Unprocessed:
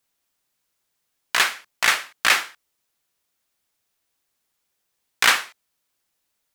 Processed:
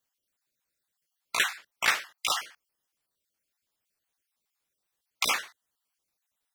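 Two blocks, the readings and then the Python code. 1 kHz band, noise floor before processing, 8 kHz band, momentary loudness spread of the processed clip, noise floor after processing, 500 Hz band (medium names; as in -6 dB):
-7.5 dB, -76 dBFS, -7.5 dB, 7 LU, -84 dBFS, -7.0 dB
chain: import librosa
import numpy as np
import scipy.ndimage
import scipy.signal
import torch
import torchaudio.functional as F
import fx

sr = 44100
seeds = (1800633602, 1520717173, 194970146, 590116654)

y = fx.spec_dropout(x, sr, seeds[0], share_pct=37)
y = y * librosa.db_to_amplitude(-5.5)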